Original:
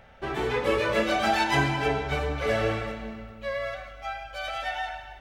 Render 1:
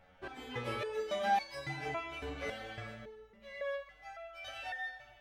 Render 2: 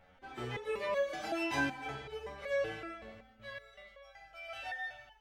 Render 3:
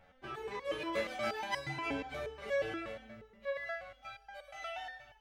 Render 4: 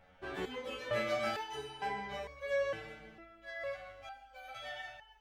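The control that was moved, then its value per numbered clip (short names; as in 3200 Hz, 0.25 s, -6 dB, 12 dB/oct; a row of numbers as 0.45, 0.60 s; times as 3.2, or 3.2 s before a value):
stepped resonator, rate: 3.6, 5.3, 8.4, 2.2 Hz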